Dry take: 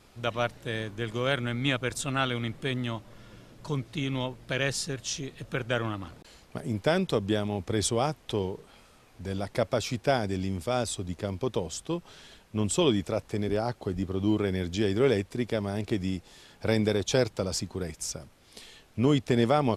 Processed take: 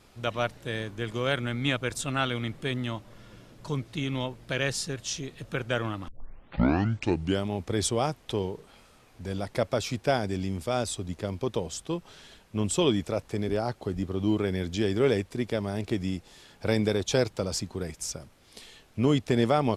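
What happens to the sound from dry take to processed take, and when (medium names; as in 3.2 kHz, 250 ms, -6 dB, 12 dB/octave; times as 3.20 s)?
6.08 s: tape start 1.38 s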